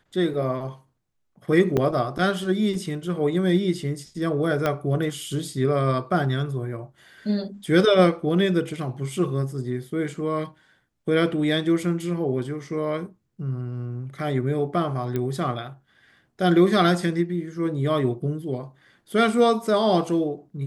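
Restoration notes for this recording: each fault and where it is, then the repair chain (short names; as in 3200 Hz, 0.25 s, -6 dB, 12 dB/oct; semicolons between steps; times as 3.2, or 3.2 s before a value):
1.77–1.78 gap 5.5 ms
4.66 pop -10 dBFS
15.16 pop -15 dBFS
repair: de-click; interpolate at 1.77, 5.5 ms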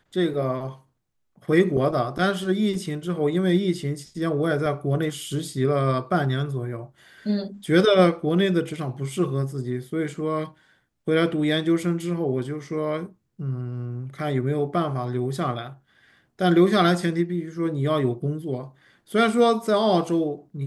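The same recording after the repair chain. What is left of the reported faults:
4.66 pop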